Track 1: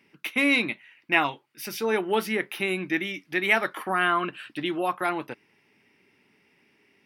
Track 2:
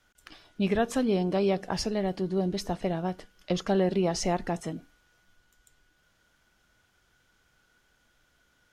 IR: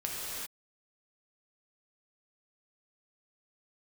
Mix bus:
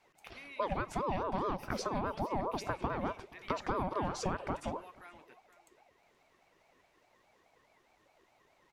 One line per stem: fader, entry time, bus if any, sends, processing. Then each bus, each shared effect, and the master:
-19.0 dB, 0.00 s, no send, echo send -14.5 dB, tilt shelf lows -7.5 dB; compression 2:1, threshold -35 dBFS, peak gain reduction 13 dB
+3.0 dB, 0.00 s, no send, echo send -23.5 dB, compression 6:1, threshold -31 dBFS, peak gain reduction 11 dB; ring modulator with a swept carrier 600 Hz, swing 40%, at 4.8 Hz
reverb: none
echo: delay 476 ms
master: treble shelf 3.1 kHz -8 dB

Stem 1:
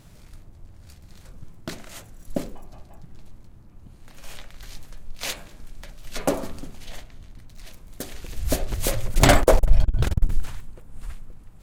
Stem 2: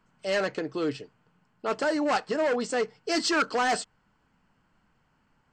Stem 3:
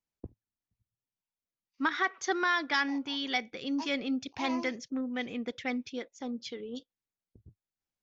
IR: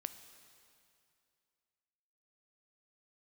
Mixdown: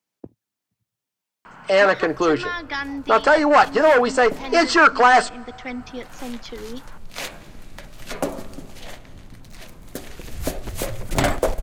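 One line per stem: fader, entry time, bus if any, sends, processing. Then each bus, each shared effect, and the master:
-7.5 dB, 1.95 s, send -4 dB, none
+2.5 dB, 1.45 s, send -13 dB, peaking EQ 1.1 kHz +13 dB 2.7 oct
-2.0 dB, 0.00 s, no send, high-pass 150 Hz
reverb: on, RT60 2.5 s, pre-delay 9 ms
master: three bands compressed up and down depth 40%

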